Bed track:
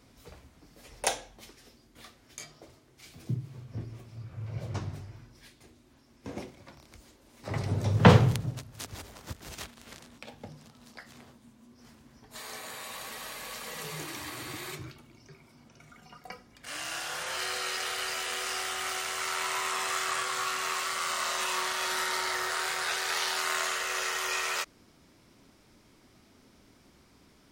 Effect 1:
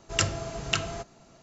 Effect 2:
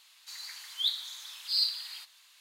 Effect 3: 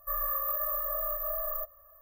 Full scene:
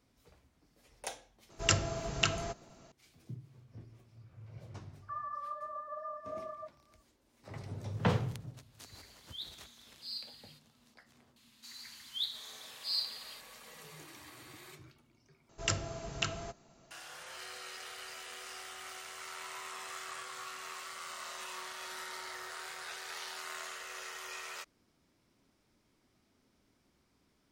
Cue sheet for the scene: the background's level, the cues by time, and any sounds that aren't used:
bed track -13 dB
1.50 s: add 1 -2.5 dB
5.02 s: add 3 -10 dB + formants replaced by sine waves
8.54 s: add 2 -14.5 dB
11.36 s: add 2 -6.5 dB
15.49 s: replace with 1 -7 dB

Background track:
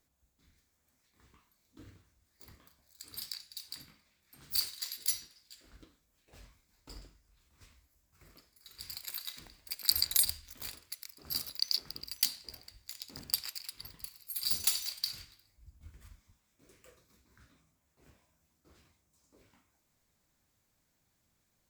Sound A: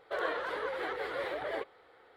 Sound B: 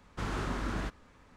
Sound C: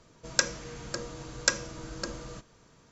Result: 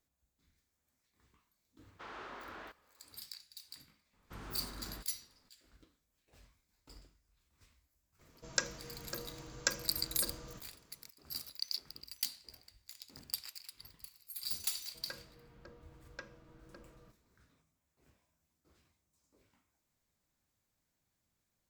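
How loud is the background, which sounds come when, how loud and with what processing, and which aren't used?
background track -7 dB
1.82 s: add B -8.5 dB + three-band isolator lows -22 dB, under 370 Hz, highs -19 dB, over 5.1 kHz
4.13 s: add B -13.5 dB
8.19 s: add C -8 dB
14.71 s: add C -17.5 dB + distance through air 280 m
not used: A

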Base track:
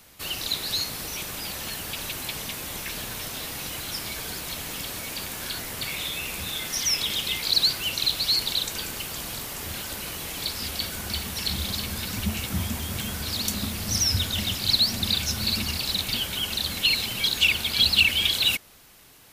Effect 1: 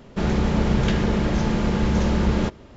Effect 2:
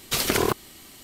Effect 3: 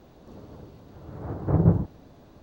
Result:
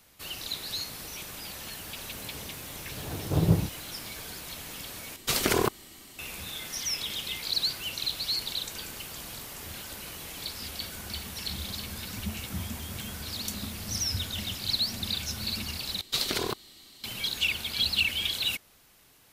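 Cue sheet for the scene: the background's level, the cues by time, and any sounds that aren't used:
base track -7 dB
1.83 s: add 3 -3.5 dB
5.16 s: replace with 2 -2.5 dB
16.01 s: replace with 2 -9.5 dB + peaking EQ 4 kHz +12 dB 0.64 oct
not used: 1

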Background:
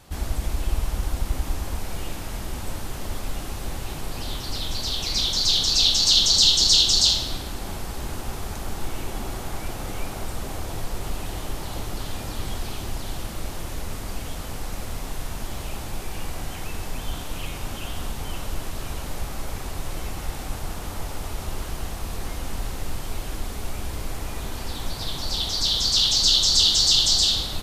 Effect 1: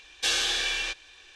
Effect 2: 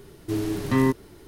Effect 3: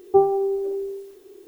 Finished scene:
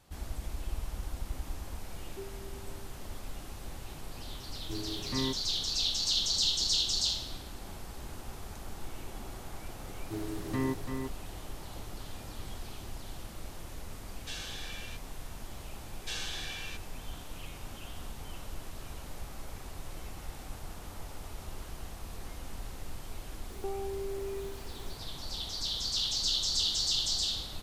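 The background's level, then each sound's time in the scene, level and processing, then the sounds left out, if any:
background -12 dB
2.03 s: add 3 -14 dB + cascade formant filter i
4.41 s: add 2 -13.5 dB
9.82 s: add 2 -11.5 dB + delay 339 ms -6 dB
14.04 s: add 1 -16.5 dB
15.84 s: add 1 -13 dB
23.50 s: add 3 -8 dB + compression 5:1, threshold -28 dBFS

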